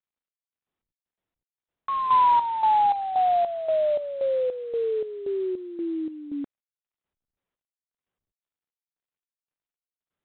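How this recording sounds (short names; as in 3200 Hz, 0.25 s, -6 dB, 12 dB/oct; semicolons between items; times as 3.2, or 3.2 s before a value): chopped level 1.9 Hz, depth 65%, duty 55%; IMA ADPCM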